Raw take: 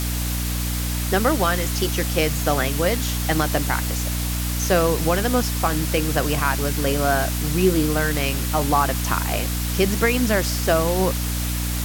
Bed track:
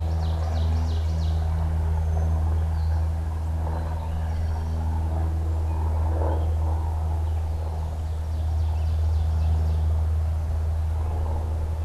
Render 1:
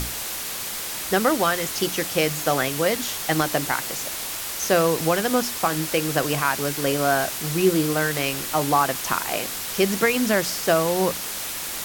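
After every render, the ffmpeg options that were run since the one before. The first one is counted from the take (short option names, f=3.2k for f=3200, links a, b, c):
-af "bandreject=f=60:t=h:w=6,bandreject=f=120:t=h:w=6,bandreject=f=180:t=h:w=6,bandreject=f=240:t=h:w=6,bandreject=f=300:t=h:w=6"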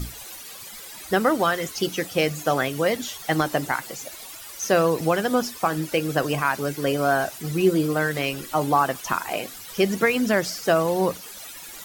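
-af "afftdn=nr=14:nf=-31"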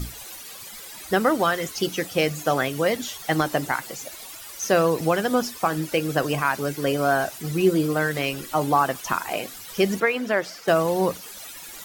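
-filter_complex "[0:a]asettb=1/sr,asplit=3[a][b][c];[a]atrim=end=10.004[d];[b]atrim=start=10:end=10.68,asetpts=PTS-STARTPTS,afade=t=in:d=0.004:c=qsin,afade=t=out:st=0.676:d=0.004:c=qsin,bass=f=250:g=-13,treble=f=4k:g=-11[e];[c]atrim=start=10.676[f];[d][e]acrossfade=d=0.004:c1=hsin:c2=qsin[g];[g][f]acrossfade=d=0.004:c1=qsin:c2=hsin"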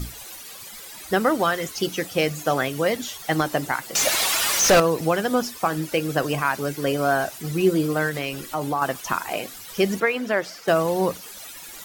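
-filter_complex "[0:a]asettb=1/sr,asplit=3[a][b][c];[a]atrim=end=3.954[d];[b]atrim=start=3.95:end=4.8,asetpts=PTS-STARTPTS,afade=t=in:d=0.004:c=qsin,afade=t=out:st=0.846:d=0.004:c=qsin,asplit=2[e][f];[f]highpass=f=720:p=1,volume=32dB,asoftclip=type=tanh:threshold=-8dB[g];[e][g]amix=inputs=2:normalize=0,lowpass=f=4.9k:p=1,volume=-6dB[h];[c]atrim=start=4.796[i];[d][h]acrossfade=d=0.004:c1=hsin:c2=qsin[j];[j][i]acrossfade=d=0.004:c1=qsin:c2=hsin,asettb=1/sr,asplit=3[k][l][m];[k]atrim=end=8.094[n];[l]atrim=start=8.09:end=8.82,asetpts=PTS-STARTPTS,afade=t=in:d=0.004:c=qsin,afade=t=out:st=0.726:d=0.004:c=qsin,acompressor=threshold=-24dB:ratio=2:attack=3.2:release=140:knee=1:detection=peak[o];[m]atrim=start=8.816[p];[n][o]acrossfade=d=0.004:c1=hsin:c2=qsin[q];[q][p]acrossfade=d=0.004:c1=qsin:c2=hsin"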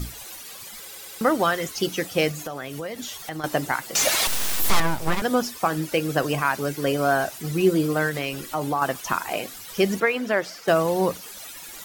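-filter_complex "[0:a]asettb=1/sr,asplit=3[a][b][c];[a]atrim=end=2.314[d];[b]atrim=start=2.31:end=3.44,asetpts=PTS-STARTPTS,afade=t=in:d=0.004:c=qsin,afade=t=out:st=1.126:d=0.004:c=qsin,acompressor=threshold=-29dB:ratio=6:attack=3.2:release=140:knee=1:detection=peak[e];[c]atrim=start=3.436[f];[d][e]acrossfade=d=0.004:c1=hsin:c2=qsin[g];[g][f]acrossfade=d=0.004:c1=qsin:c2=hsin,asettb=1/sr,asplit=3[h][i][j];[h]atrim=end=4.274[k];[i]atrim=start=4.27:end=5.22,asetpts=PTS-STARTPTS,afade=t=in:d=0.004:c=qsin,afade=t=out:st=0.946:d=0.004:c=qsin,aeval=exprs='abs(val(0))':c=same[l];[j]atrim=start=5.216[m];[k][l]acrossfade=d=0.004:c1=hsin:c2=qsin[n];[n][m]acrossfade=d=0.004:c1=qsin:c2=hsin,asplit=5[o][p][q][r][s];[o]atrim=end=0.912[t];[p]atrim=start=0.808:end=0.912[u];[q]atrim=start=0.808:end=0.912[v];[r]atrim=start=0.808:end=0.912[w];[s]atrim=start=1.208[x];[t][u]acrossfade=d=0.004:c1=hsin:c2=hsin[y];[y][v]acrossfade=d=0.004:c1=hsin:c2=hsin[z];[z][w]acrossfade=d=0.004:c1=hsin:c2=hsin[aa];[aa][x]acrossfade=d=0.004:c1=hsin:c2=hsin"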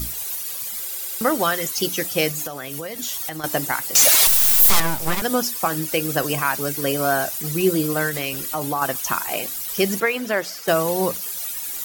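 -af "aemphasis=mode=production:type=50kf"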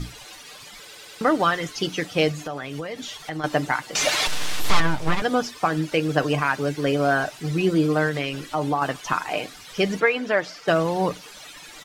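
-af "lowpass=3.7k,aecho=1:1:6.7:0.38"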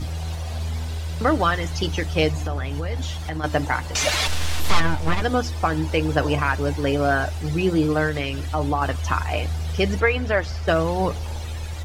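-filter_complex "[1:a]volume=-4dB[a];[0:a][a]amix=inputs=2:normalize=0"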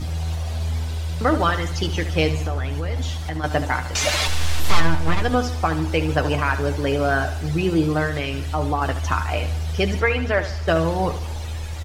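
-filter_complex "[0:a]asplit=2[a][b];[b]adelay=12,volume=-14dB[c];[a][c]amix=inputs=2:normalize=0,aecho=1:1:73|146|219|292|365:0.251|0.116|0.0532|0.0244|0.0112"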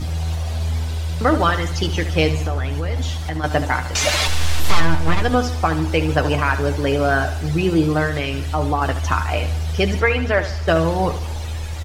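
-af "volume=2.5dB,alimiter=limit=-3dB:level=0:latency=1"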